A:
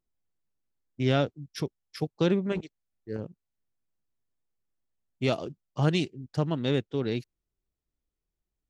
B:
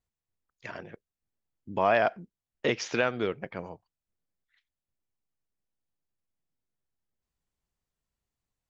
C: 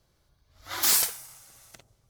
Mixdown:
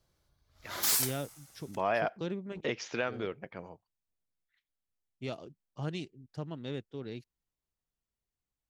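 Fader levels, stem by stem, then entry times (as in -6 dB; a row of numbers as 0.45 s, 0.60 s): -12.0 dB, -6.5 dB, -6.0 dB; 0.00 s, 0.00 s, 0.00 s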